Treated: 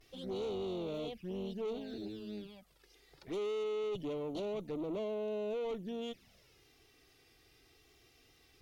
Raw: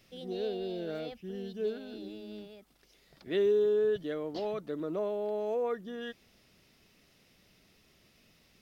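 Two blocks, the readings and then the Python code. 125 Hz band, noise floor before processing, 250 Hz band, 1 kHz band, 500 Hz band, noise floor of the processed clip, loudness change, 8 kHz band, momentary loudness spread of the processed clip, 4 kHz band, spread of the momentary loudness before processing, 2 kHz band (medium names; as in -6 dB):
-0.5 dB, -66 dBFS, -2.0 dB, -5.0 dB, -6.5 dB, -67 dBFS, -6.0 dB, no reading, 9 LU, -2.0 dB, 17 LU, -7.0 dB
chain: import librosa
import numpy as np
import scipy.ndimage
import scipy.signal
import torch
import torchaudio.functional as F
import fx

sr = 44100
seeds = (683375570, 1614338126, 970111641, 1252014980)

y = fx.vibrato(x, sr, rate_hz=0.65, depth_cents=57.0)
y = fx.tube_stage(y, sr, drive_db=38.0, bias=0.45)
y = fx.env_flanger(y, sr, rest_ms=3.0, full_db=-40.0)
y = F.gain(torch.from_numpy(y), 4.0).numpy()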